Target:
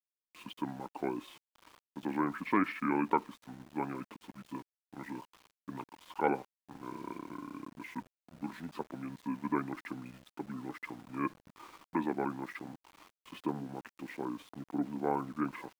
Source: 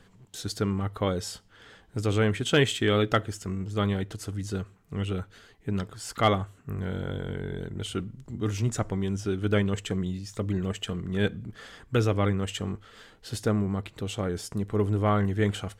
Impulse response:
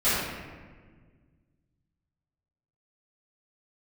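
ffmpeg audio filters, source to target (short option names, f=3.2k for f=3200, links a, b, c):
-af "asetrate=30296,aresample=44100,atempo=1.45565,highpass=f=210:w=0.5412,highpass=f=210:w=1.3066,equalizer=f=540:t=q:w=4:g=-3,equalizer=f=1k:t=q:w=4:g=5,equalizer=f=2.2k:t=q:w=4:g=-4,lowpass=f=2.8k:w=0.5412,lowpass=f=2.8k:w=1.3066,aeval=exprs='val(0)*gte(abs(val(0)),0.00447)':c=same,volume=-5.5dB"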